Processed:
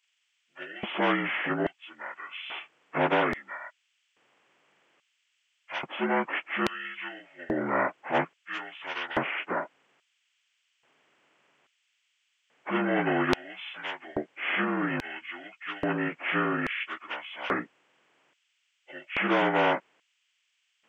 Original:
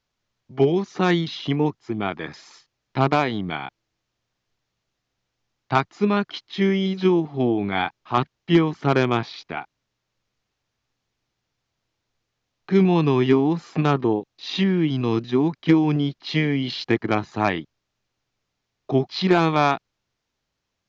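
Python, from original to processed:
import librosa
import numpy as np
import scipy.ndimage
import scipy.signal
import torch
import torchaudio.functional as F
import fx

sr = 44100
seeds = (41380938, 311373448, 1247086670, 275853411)

y = fx.partial_stretch(x, sr, pct=78)
y = fx.filter_lfo_highpass(y, sr, shape='square', hz=0.6, low_hz=340.0, high_hz=3400.0, q=0.94)
y = fx.spectral_comp(y, sr, ratio=2.0)
y = F.gain(torch.from_numpy(y), 1.5).numpy()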